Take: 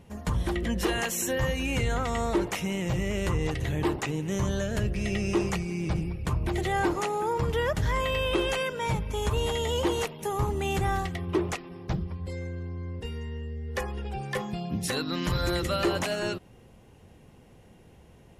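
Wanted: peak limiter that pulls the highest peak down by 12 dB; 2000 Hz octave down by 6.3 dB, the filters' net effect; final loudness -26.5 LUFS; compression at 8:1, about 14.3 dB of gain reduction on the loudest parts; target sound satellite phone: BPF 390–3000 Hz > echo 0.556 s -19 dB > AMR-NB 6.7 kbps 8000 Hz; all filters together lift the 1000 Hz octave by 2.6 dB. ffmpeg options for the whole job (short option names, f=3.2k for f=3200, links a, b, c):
-af "equalizer=f=1k:t=o:g=5.5,equalizer=f=2k:t=o:g=-9,acompressor=threshold=-37dB:ratio=8,alimiter=level_in=11dB:limit=-24dB:level=0:latency=1,volume=-11dB,highpass=390,lowpass=3k,aecho=1:1:556:0.112,volume=22.5dB" -ar 8000 -c:a libopencore_amrnb -b:a 6700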